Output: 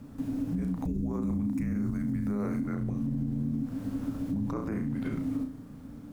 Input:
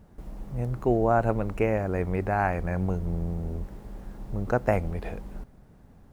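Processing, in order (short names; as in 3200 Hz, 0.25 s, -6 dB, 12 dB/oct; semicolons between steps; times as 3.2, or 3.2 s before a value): 0.85–2.62 tone controls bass +12 dB, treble +12 dB; frequency shift -310 Hz; on a send: flutter echo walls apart 5.9 m, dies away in 0.32 s; on the sum: dynamic EQ 220 Hz, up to +4 dB, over -37 dBFS, Q 0.77; compressor 3:1, threshold -35 dBFS, peak gain reduction 18.5 dB; limiter -30 dBFS, peak gain reduction 10.5 dB; gain +6.5 dB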